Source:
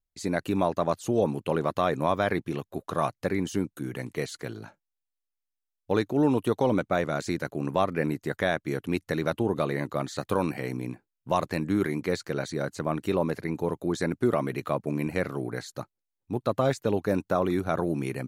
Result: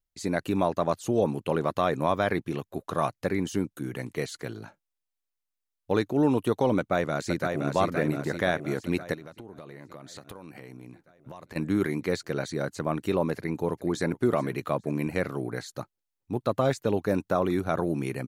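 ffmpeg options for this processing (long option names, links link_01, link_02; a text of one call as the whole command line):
ffmpeg -i in.wav -filter_complex "[0:a]asplit=2[link_01][link_02];[link_02]afade=type=in:start_time=6.77:duration=0.01,afade=type=out:start_time=7.75:duration=0.01,aecho=0:1:520|1040|1560|2080|2600|3120|3640|4160|4680:0.595662|0.357397|0.214438|0.128663|0.0771978|0.0463187|0.0277912|0.0166747|0.0100048[link_03];[link_01][link_03]amix=inputs=2:normalize=0,asplit=3[link_04][link_05][link_06];[link_04]afade=type=out:start_time=9.13:duration=0.02[link_07];[link_05]acompressor=threshold=-40dB:ratio=8:attack=3.2:release=140:knee=1:detection=peak,afade=type=in:start_time=9.13:duration=0.02,afade=type=out:start_time=11.55:duration=0.02[link_08];[link_06]afade=type=in:start_time=11.55:duration=0.02[link_09];[link_07][link_08][link_09]amix=inputs=3:normalize=0,asplit=2[link_10][link_11];[link_11]afade=type=in:start_time=13.35:duration=0.01,afade=type=out:start_time=14.11:duration=0.01,aecho=0:1:420|840:0.141254|0.0353134[link_12];[link_10][link_12]amix=inputs=2:normalize=0" out.wav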